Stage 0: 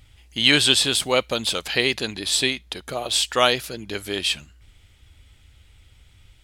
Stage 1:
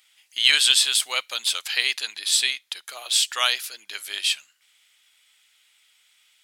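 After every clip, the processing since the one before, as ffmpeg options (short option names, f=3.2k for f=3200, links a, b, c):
-af "highpass=1.4k,highshelf=f=5.5k:g=5,volume=-1dB"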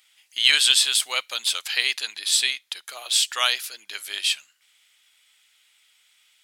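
-af anull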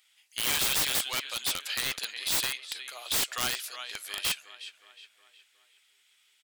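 -filter_complex "[0:a]asplit=2[a][b];[b]adelay=364,lowpass=f=3.4k:p=1,volume=-12dB,asplit=2[c][d];[d]adelay=364,lowpass=f=3.4k:p=1,volume=0.54,asplit=2[e][f];[f]adelay=364,lowpass=f=3.4k:p=1,volume=0.54,asplit=2[g][h];[h]adelay=364,lowpass=f=3.4k:p=1,volume=0.54,asplit=2[i][j];[j]adelay=364,lowpass=f=3.4k:p=1,volume=0.54,asplit=2[k][l];[l]adelay=364,lowpass=f=3.4k:p=1,volume=0.54[m];[a][c][e][g][i][k][m]amix=inputs=7:normalize=0,aeval=exprs='(mod(5.62*val(0)+1,2)-1)/5.62':c=same,volume=-5.5dB"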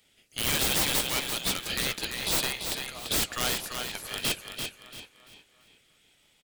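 -filter_complex "[0:a]asplit=2[a][b];[b]acrusher=samples=34:mix=1:aa=0.000001:lfo=1:lforange=20.4:lforate=0.73,volume=-7.5dB[c];[a][c]amix=inputs=2:normalize=0,aecho=1:1:340|680|1020|1360:0.447|0.13|0.0376|0.0109"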